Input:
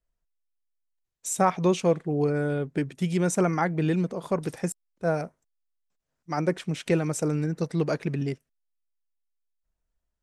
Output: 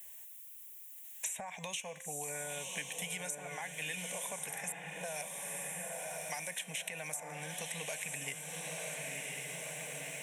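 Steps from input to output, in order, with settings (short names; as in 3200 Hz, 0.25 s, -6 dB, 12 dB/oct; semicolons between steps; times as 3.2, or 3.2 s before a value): limiter -19.5 dBFS, peak gain reduction 11 dB; differentiator; de-hum 261.8 Hz, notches 31; compressor 4:1, threshold -44 dBFS, peak gain reduction 14 dB; fixed phaser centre 1300 Hz, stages 6; diffused feedback echo 1.023 s, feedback 44%, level -6 dB; three-band squash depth 100%; gain +13 dB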